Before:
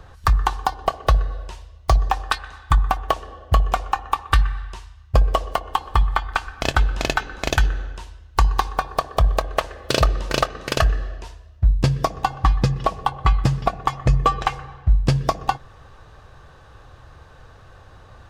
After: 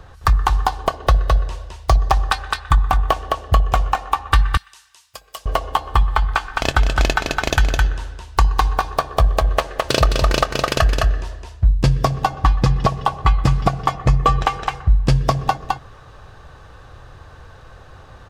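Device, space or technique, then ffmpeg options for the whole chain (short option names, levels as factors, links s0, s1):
ducked delay: -filter_complex "[0:a]asplit=3[s0][s1][s2];[s1]adelay=212,volume=0.75[s3];[s2]apad=whole_len=816268[s4];[s3][s4]sidechaincompress=threshold=0.112:ratio=8:attack=16:release=191[s5];[s0][s5]amix=inputs=2:normalize=0,asettb=1/sr,asplit=3[s6][s7][s8];[s6]atrim=end=4.574[s9];[s7]atrim=start=4.57:end=5.46,asetpts=PTS-STARTPTS,afade=t=in:d=0.004:c=qsin,afade=t=out:st=0.886:d=0.004:c=qsin,aderivative[s10];[s8]atrim=start=5.456[s11];[s9][s10]acrossfade=d=0.004:c1=hsin:c2=qsin[s12];[s12][s11]acrossfade=d=0.004:c1=qsin:c2=hsin,volume=1.26"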